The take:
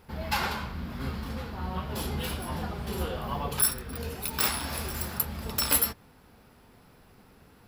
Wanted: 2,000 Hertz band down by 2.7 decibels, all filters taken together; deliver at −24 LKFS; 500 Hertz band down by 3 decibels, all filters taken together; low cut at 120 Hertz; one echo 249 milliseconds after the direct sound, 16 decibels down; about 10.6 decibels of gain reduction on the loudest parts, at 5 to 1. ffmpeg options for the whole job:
ffmpeg -i in.wav -af "highpass=120,equalizer=frequency=500:width_type=o:gain=-3.5,equalizer=frequency=2000:width_type=o:gain=-3.5,acompressor=threshold=-32dB:ratio=5,aecho=1:1:249:0.158,volume=12.5dB" out.wav

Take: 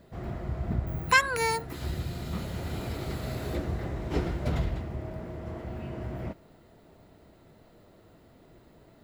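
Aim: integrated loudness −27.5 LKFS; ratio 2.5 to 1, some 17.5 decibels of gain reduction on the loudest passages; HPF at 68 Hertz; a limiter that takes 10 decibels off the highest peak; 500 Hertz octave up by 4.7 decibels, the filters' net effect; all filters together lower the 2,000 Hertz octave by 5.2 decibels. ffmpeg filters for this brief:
ffmpeg -i in.wav -af "highpass=68,equalizer=frequency=500:width_type=o:gain=6,equalizer=frequency=2000:width_type=o:gain=-7.5,acompressor=threshold=-46dB:ratio=2.5,volume=19.5dB,alimiter=limit=-16.5dB:level=0:latency=1" out.wav

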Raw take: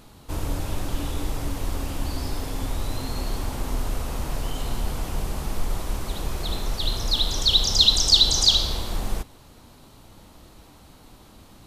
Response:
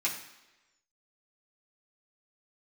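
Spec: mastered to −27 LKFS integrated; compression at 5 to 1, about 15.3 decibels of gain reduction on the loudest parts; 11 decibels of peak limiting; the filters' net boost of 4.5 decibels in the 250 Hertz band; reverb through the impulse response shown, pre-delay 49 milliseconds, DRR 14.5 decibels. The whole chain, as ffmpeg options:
-filter_complex "[0:a]equalizer=frequency=250:width_type=o:gain=5.5,acompressor=threshold=-30dB:ratio=5,alimiter=level_in=6dB:limit=-24dB:level=0:latency=1,volume=-6dB,asplit=2[link_01][link_02];[1:a]atrim=start_sample=2205,adelay=49[link_03];[link_02][link_03]afir=irnorm=-1:irlink=0,volume=-21dB[link_04];[link_01][link_04]amix=inputs=2:normalize=0,volume=14dB"

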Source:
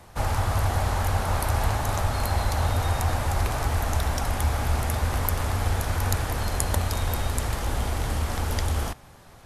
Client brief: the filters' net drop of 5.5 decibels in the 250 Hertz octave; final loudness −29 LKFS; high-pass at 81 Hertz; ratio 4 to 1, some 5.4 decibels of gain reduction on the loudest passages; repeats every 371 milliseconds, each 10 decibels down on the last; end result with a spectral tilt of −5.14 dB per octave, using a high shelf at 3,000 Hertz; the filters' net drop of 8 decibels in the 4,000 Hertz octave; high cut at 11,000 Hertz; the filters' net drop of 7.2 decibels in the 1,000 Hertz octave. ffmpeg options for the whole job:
ffmpeg -i in.wav -af "highpass=81,lowpass=11000,equalizer=frequency=250:width_type=o:gain=-7,equalizer=frequency=1000:width_type=o:gain=-8.5,highshelf=frequency=3000:gain=-3.5,equalizer=frequency=4000:width_type=o:gain=-7,acompressor=threshold=-30dB:ratio=4,aecho=1:1:371|742|1113|1484:0.316|0.101|0.0324|0.0104,volume=5.5dB" out.wav

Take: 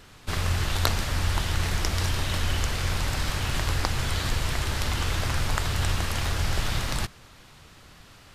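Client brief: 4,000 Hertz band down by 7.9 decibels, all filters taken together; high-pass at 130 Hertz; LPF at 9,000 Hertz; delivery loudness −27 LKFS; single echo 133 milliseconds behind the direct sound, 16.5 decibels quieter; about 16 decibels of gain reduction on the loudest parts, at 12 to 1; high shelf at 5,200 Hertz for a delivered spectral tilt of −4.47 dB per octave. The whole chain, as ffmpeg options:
ffmpeg -i in.wav -af "highpass=130,lowpass=9000,equalizer=frequency=4000:width_type=o:gain=-7,highshelf=frequency=5200:gain=-7.5,acompressor=threshold=-41dB:ratio=12,aecho=1:1:133:0.15,volume=18dB" out.wav

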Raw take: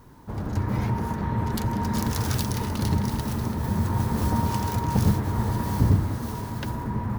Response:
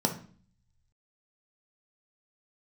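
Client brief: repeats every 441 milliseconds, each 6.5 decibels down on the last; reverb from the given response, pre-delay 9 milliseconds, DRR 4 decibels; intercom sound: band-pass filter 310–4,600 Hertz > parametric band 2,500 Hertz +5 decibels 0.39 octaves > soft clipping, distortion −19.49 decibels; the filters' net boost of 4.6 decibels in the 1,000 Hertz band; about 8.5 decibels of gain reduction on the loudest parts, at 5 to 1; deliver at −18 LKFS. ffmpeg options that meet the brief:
-filter_complex "[0:a]equalizer=frequency=1000:width_type=o:gain=5,acompressor=threshold=-24dB:ratio=5,aecho=1:1:441|882|1323|1764|2205|2646:0.473|0.222|0.105|0.0491|0.0231|0.0109,asplit=2[link_01][link_02];[1:a]atrim=start_sample=2205,adelay=9[link_03];[link_02][link_03]afir=irnorm=-1:irlink=0,volume=-13dB[link_04];[link_01][link_04]amix=inputs=2:normalize=0,highpass=310,lowpass=4600,equalizer=frequency=2500:width_type=o:width=0.39:gain=5,asoftclip=threshold=-21dB,volume=12dB"

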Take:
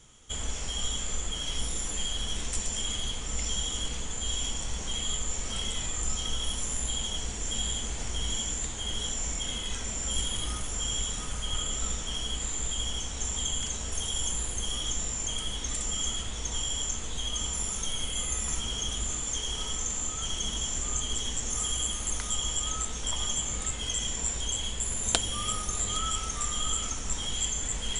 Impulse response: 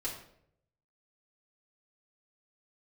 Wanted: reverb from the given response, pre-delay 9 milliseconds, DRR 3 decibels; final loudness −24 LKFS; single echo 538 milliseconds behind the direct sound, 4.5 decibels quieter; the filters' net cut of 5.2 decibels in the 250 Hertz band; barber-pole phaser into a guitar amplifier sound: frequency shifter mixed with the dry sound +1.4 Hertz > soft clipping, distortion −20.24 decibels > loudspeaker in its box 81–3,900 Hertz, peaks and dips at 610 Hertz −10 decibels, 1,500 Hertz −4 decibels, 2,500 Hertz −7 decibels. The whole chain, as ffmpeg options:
-filter_complex "[0:a]equalizer=frequency=250:width_type=o:gain=-6.5,aecho=1:1:538:0.596,asplit=2[link_01][link_02];[1:a]atrim=start_sample=2205,adelay=9[link_03];[link_02][link_03]afir=irnorm=-1:irlink=0,volume=-5dB[link_04];[link_01][link_04]amix=inputs=2:normalize=0,asplit=2[link_05][link_06];[link_06]afreqshift=1.4[link_07];[link_05][link_07]amix=inputs=2:normalize=1,asoftclip=threshold=-19dB,highpass=81,equalizer=frequency=610:width_type=q:width=4:gain=-10,equalizer=frequency=1500:width_type=q:width=4:gain=-4,equalizer=frequency=2500:width_type=q:width=4:gain=-7,lowpass=frequency=3900:width=0.5412,lowpass=frequency=3900:width=1.3066,volume=14.5dB"

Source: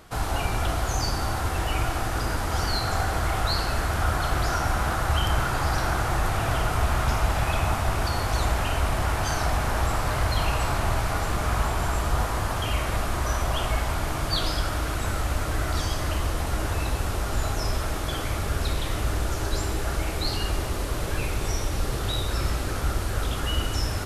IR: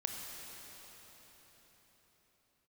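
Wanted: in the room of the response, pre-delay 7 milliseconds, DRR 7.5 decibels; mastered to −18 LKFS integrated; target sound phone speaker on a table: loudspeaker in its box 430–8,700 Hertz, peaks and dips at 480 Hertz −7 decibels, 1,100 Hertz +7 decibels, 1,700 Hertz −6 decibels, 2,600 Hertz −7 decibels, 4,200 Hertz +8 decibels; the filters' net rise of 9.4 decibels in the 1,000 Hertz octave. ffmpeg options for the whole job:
-filter_complex "[0:a]equalizer=frequency=1000:width_type=o:gain=8.5,asplit=2[link_01][link_02];[1:a]atrim=start_sample=2205,adelay=7[link_03];[link_02][link_03]afir=irnorm=-1:irlink=0,volume=-9dB[link_04];[link_01][link_04]amix=inputs=2:normalize=0,highpass=frequency=430:width=0.5412,highpass=frequency=430:width=1.3066,equalizer=frequency=480:width_type=q:width=4:gain=-7,equalizer=frequency=1100:width_type=q:width=4:gain=7,equalizer=frequency=1700:width_type=q:width=4:gain=-6,equalizer=frequency=2600:width_type=q:width=4:gain=-7,equalizer=frequency=4200:width_type=q:width=4:gain=8,lowpass=frequency=8700:width=0.5412,lowpass=frequency=8700:width=1.3066,volume=4.5dB"

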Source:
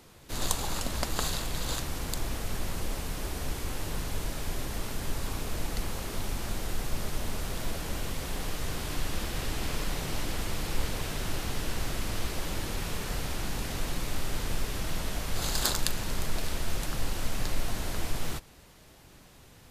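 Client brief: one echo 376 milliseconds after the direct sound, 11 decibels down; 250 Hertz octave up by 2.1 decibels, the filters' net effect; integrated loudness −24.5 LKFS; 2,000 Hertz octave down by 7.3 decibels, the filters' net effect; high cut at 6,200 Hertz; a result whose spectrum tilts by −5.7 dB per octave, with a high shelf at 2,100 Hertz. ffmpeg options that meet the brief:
ffmpeg -i in.wav -af "lowpass=6200,equalizer=frequency=250:width_type=o:gain=3,equalizer=frequency=2000:width_type=o:gain=-4.5,highshelf=frequency=2100:gain=-8.5,aecho=1:1:376:0.282,volume=12dB" out.wav

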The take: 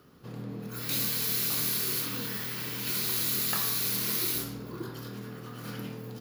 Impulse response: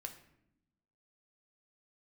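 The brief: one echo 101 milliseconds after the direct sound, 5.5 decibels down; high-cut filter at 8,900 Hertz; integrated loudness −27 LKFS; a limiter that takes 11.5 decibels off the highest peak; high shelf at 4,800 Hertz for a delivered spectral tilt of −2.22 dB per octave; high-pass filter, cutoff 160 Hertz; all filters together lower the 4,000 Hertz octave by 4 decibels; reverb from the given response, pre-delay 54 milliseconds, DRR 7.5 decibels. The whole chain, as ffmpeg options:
-filter_complex "[0:a]highpass=160,lowpass=8900,equalizer=frequency=4000:width_type=o:gain=-7.5,highshelf=frequency=4800:gain=5.5,alimiter=level_in=3dB:limit=-24dB:level=0:latency=1,volume=-3dB,aecho=1:1:101:0.531,asplit=2[link_01][link_02];[1:a]atrim=start_sample=2205,adelay=54[link_03];[link_02][link_03]afir=irnorm=-1:irlink=0,volume=-4dB[link_04];[link_01][link_04]amix=inputs=2:normalize=0,volume=8dB"

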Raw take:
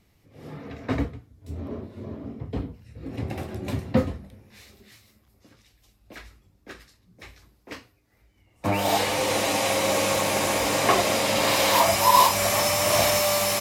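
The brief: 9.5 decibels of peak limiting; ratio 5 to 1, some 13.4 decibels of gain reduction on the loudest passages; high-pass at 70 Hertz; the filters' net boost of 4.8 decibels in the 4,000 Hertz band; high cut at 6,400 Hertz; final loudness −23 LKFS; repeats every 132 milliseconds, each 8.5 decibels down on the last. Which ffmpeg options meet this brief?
ffmpeg -i in.wav -af "highpass=70,lowpass=6400,equalizer=frequency=4000:width_type=o:gain=7,acompressor=threshold=-27dB:ratio=5,alimiter=level_in=0.5dB:limit=-24dB:level=0:latency=1,volume=-0.5dB,aecho=1:1:132|264|396|528:0.376|0.143|0.0543|0.0206,volume=11dB" out.wav

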